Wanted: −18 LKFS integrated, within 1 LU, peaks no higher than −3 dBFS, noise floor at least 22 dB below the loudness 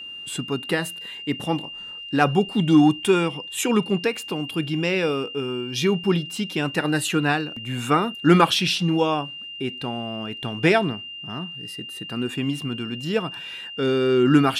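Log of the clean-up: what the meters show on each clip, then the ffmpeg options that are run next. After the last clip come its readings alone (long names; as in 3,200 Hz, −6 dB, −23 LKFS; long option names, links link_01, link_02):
interfering tone 2,800 Hz; level of the tone −34 dBFS; integrated loudness −23.0 LKFS; sample peak −3.5 dBFS; target loudness −18.0 LKFS
→ -af "bandreject=frequency=2800:width=30"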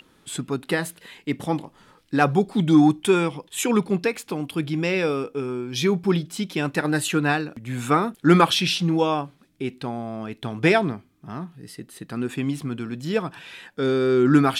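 interfering tone none found; integrated loudness −23.0 LKFS; sample peak −3.0 dBFS; target loudness −18.0 LKFS
→ -af "volume=5dB,alimiter=limit=-3dB:level=0:latency=1"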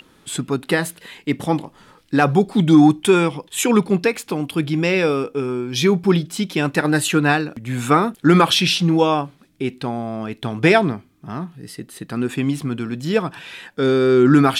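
integrated loudness −18.5 LKFS; sample peak −3.0 dBFS; background noise floor −54 dBFS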